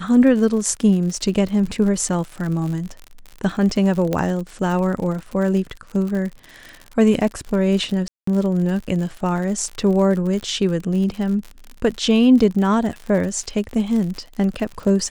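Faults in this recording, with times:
crackle 69/s -27 dBFS
4.13 pop -9 dBFS
8.08–8.27 gap 0.194 s

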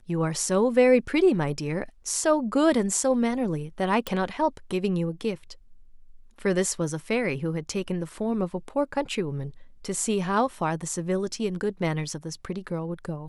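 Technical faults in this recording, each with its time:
4.07 pop

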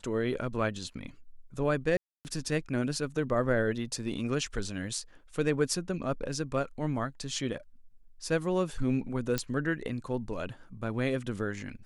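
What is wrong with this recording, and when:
1.97–2.25 gap 0.279 s
9.38 pop -14 dBFS

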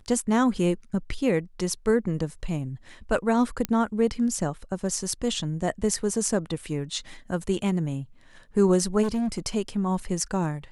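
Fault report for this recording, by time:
3.65 pop -10 dBFS
9.02–9.39 clipped -23 dBFS

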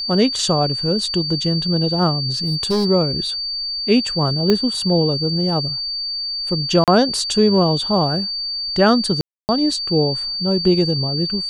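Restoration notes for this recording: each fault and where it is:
tone 4600 Hz -22 dBFS
2.26–2.86 clipped -14.5 dBFS
4.5 pop -4 dBFS
6.84–6.88 gap 37 ms
9.21–9.49 gap 0.279 s

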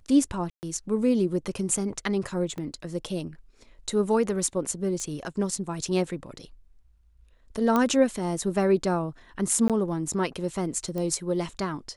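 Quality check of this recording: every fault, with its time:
0.5–0.63 gap 0.129 s
2.58 gap 2.3 ms
5 pop -22 dBFS
7.76 pop -11 dBFS
9.68–9.7 gap 17 ms
10.98 pop -20 dBFS

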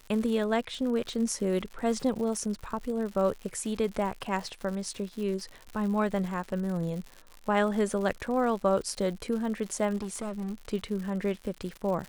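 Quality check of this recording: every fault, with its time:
crackle 140/s -36 dBFS
9.96–10.54 clipped -30.5 dBFS

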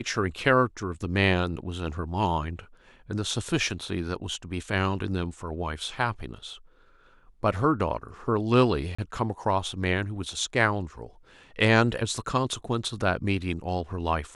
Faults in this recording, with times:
8.95–8.98 gap 35 ms

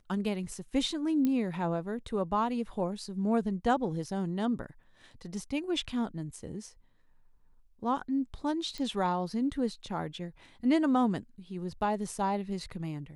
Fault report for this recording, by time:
1.25 pop -18 dBFS
8.78 pop -26 dBFS

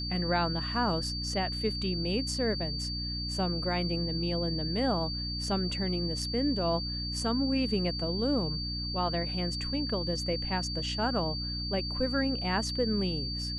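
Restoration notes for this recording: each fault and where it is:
hum 60 Hz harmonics 5 -37 dBFS
tone 4600 Hz -35 dBFS

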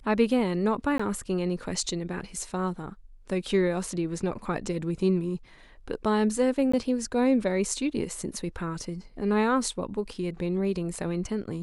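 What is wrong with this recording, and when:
0.98–0.99 gap 15 ms
6.72–6.74 gap 15 ms

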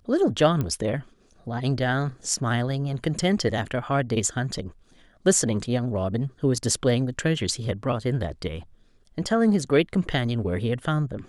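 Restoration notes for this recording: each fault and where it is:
0.61 pop -15 dBFS

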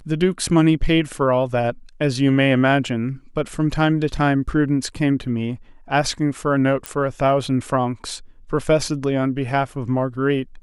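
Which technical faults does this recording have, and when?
6.86 pop -9 dBFS

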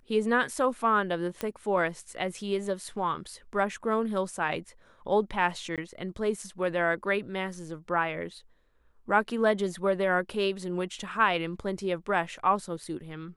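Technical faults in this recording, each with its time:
1.41 pop -17 dBFS
5.76–5.78 gap 17 ms

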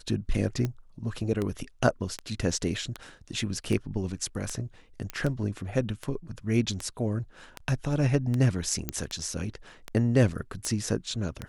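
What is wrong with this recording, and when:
tick 78 rpm -17 dBFS
5.1 pop -18 dBFS
8.89 pop -13 dBFS

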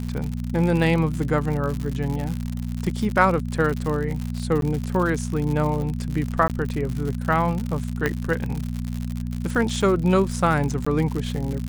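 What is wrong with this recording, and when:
crackle 100/s -26 dBFS
hum 60 Hz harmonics 4 -28 dBFS
4.61–4.62 gap 12 ms
6.48–6.5 gap 18 ms
8.06 pop -9 dBFS
10.85–10.87 gap 15 ms

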